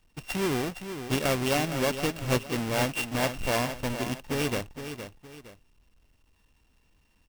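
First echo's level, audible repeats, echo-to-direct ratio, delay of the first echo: −9.5 dB, 2, −9.0 dB, 464 ms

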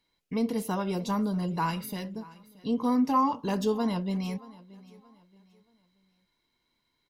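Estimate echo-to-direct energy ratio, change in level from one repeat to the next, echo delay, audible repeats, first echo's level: −20.5 dB, −9.5 dB, 627 ms, 2, −21.0 dB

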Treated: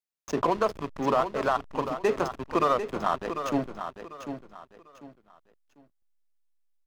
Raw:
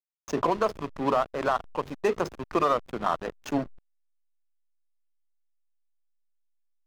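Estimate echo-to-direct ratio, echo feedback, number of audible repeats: −8.5 dB, 28%, 3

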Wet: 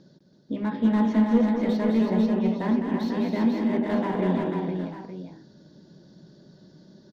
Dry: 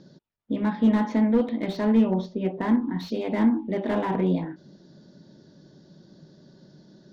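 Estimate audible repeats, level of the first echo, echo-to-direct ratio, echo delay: 5, −6.0 dB, 0.0 dB, 205 ms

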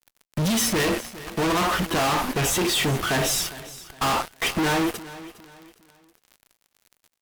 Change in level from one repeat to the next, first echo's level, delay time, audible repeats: −9.5 dB, −17.0 dB, 408 ms, 2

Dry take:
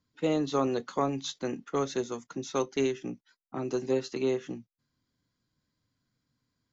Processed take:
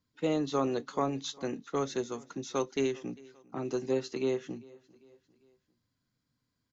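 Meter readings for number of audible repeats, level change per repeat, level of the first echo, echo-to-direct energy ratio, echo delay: 2, −6.5 dB, −23.5 dB, −22.5 dB, 398 ms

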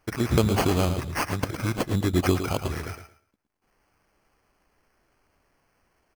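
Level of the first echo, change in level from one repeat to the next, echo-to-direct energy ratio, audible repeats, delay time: −9.5 dB, −15.0 dB, −9.0 dB, 2, 111 ms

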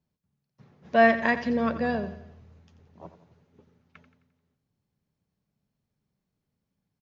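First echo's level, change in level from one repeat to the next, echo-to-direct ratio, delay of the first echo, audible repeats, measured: −12.5 dB, −6.5 dB, −11.5 dB, 87 ms, 4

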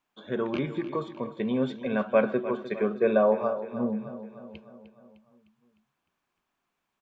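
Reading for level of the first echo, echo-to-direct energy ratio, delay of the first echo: −13.5 dB, −12.0 dB, 304 ms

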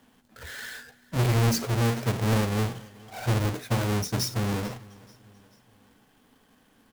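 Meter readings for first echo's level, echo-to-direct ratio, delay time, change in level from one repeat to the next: −23.0 dB, −22.0 dB, 438 ms, −6.5 dB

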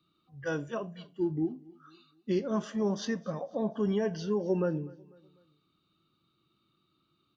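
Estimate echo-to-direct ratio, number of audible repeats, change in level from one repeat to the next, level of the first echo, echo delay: −22.0 dB, 2, −7.0 dB, −23.0 dB, 248 ms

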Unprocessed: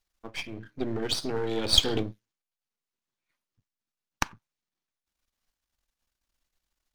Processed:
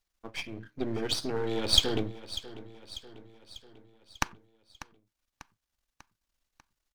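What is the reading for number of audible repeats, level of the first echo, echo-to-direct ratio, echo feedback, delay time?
4, −15.5 dB, −14.0 dB, 54%, 594 ms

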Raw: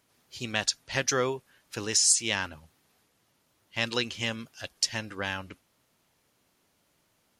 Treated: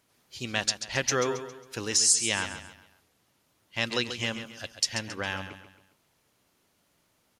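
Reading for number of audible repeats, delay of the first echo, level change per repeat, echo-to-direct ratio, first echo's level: 3, 136 ms, −8.0 dB, −10.0 dB, −10.5 dB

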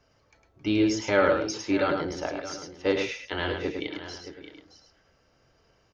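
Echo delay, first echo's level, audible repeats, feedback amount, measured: 105 ms, −5.5 dB, 3, repeats not evenly spaced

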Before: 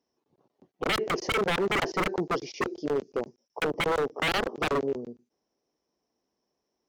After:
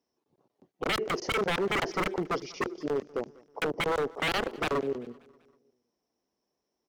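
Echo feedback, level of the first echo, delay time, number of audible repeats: 53%, −23.0 dB, 194 ms, 3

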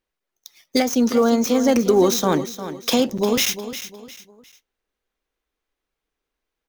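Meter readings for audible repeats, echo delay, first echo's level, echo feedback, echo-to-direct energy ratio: 3, 354 ms, −12.0 dB, 34%, −11.5 dB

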